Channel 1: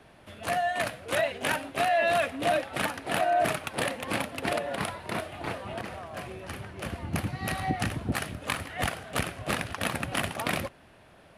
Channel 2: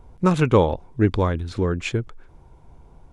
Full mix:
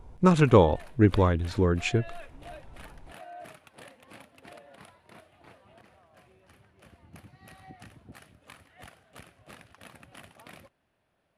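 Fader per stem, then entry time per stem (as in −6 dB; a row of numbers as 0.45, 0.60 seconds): −20.0, −1.5 decibels; 0.00, 0.00 seconds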